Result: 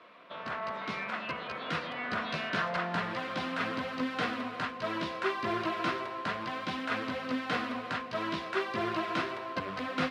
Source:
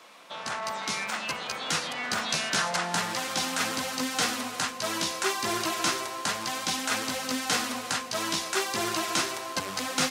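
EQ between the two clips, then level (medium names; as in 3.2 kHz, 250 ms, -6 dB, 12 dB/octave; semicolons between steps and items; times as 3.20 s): Butterworth band-stop 830 Hz, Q 6.6; distance through air 400 m; 0.0 dB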